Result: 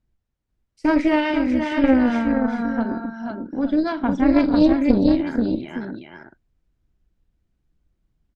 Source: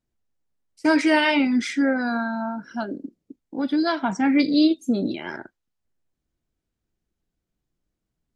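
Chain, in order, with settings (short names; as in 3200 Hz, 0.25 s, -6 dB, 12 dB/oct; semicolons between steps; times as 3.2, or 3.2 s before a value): RIAA curve playback; on a send: tapped delay 43/450/489/870 ms -13/-13/-3.5/-11 dB; 1.19–1.84 on the sum: compressor, threshold -13 dBFS, peak gain reduction 5.5 dB; added harmonics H 2 -6 dB, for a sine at -2 dBFS; mismatched tape noise reduction encoder only; gain -4 dB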